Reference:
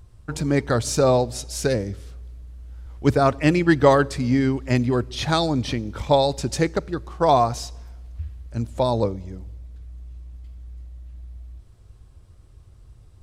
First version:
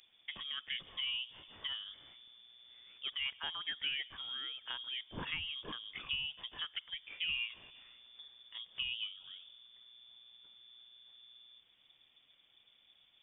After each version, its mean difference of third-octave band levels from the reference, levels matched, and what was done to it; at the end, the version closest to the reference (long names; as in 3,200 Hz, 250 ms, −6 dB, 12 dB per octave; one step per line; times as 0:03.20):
15.5 dB: downward compressor 4 to 1, threshold −31 dBFS, peak gain reduction 17.5 dB
high-pass filter 540 Hz 6 dB per octave
voice inversion scrambler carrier 3,500 Hz
level −4 dB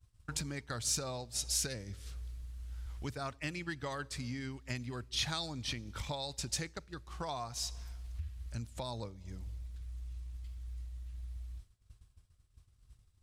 6.5 dB: downward compressor 4 to 1, threshold −34 dBFS, peak gain reduction 19.5 dB
guitar amp tone stack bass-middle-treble 5-5-5
downward expander −51 dBFS
level +10.5 dB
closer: second